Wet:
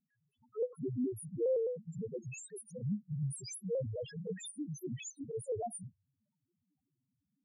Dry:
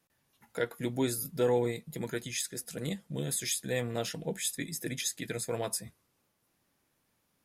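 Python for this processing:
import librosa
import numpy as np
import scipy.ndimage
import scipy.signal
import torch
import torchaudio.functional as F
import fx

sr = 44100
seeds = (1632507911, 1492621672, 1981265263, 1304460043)

y = fx.fold_sine(x, sr, drive_db=9, ceiling_db=-16.0)
y = fx.spec_topn(y, sr, count=1)
y = fx.vibrato_shape(y, sr, shape='square', rate_hz=4.8, depth_cents=100.0)
y = y * 10.0 ** (-5.5 / 20.0)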